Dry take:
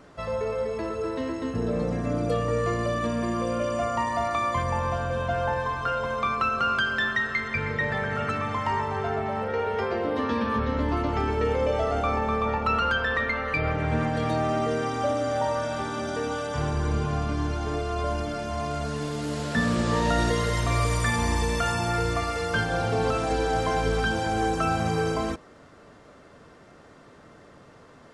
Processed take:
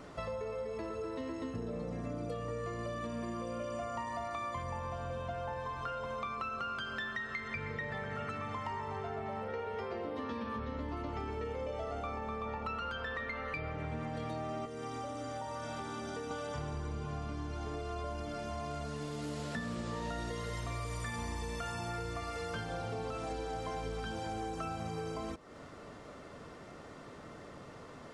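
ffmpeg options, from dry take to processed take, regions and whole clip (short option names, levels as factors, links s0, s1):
-filter_complex "[0:a]asettb=1/sr,asplit=3[s0][s1][s2];[s0]atrim=end=14.654[s3];[s1]atrim=start=14.65:end=16.31,asetpts=PTS-STARTPTS,afade=t=in:d=0.004:c=qsin,afade=t=out:st=1.656:d=0.004:c=qsin,bandreject=f=600:w=14,acrossover=split=85|7000[s4][s5][s6];[s4]acompressor=threshold=0.002:ratio=4[s7];[s5]acompressor=threshold=0.0224:ratio=4[s8];[s6]acompressor=threshold=0.00158:ratio=4[s9];[s7][s8][s9]amix=inputs=3:normalize=0[s10];[s2]atrim=start=16.306[s11];[s3][s10]acrossfade=d=0.004:c1=hsin:c2=qsin[s12];[s12][s11]acrossfade=d=0.004:c1=qsin:c2=hsin,bandreject=f=1600:w=15,acompressor=threshold=0.0112:ratio=5,volume=1.12"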